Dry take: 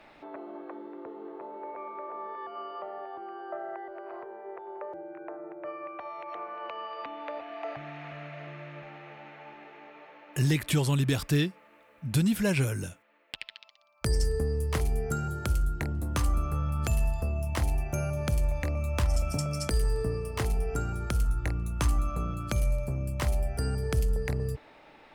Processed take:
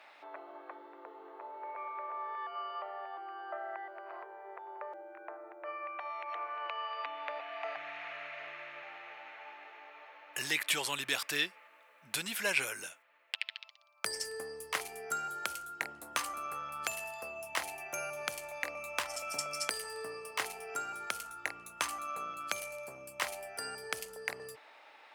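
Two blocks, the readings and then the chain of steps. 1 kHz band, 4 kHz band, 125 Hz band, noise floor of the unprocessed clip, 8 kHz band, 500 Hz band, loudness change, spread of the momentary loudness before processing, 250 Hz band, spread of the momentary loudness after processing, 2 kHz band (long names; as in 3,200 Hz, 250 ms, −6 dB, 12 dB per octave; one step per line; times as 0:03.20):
−0.5 dB, +2.0 dB, −31.5 dB, −58 dBFS, +0.5 dB, −8.0 dB, −7.0 dB, 15 LU, −19.5 dB, 16 LU, +3.0 dB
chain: high-pass filter 770 Hz 12 dB per octave
dynamic equaliser 2,300 Hz, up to +4 dB, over −52 dBFS, Q 1.1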